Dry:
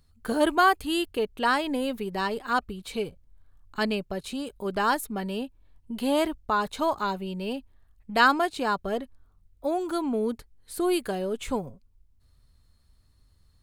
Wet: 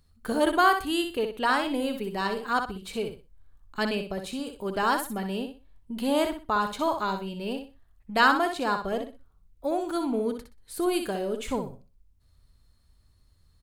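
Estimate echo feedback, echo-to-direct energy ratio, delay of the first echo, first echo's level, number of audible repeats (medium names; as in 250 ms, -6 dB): 25%, -6.5 dB, 62 ms, -7.0 dB, 3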